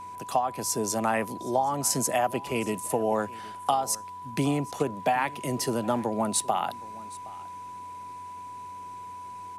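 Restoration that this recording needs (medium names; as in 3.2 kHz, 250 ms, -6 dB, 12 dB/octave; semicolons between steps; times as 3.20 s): de-hum 92.4 Hz, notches 5; band-stop 990 Hz, Q 30; inverse comb 767 ms -21 dB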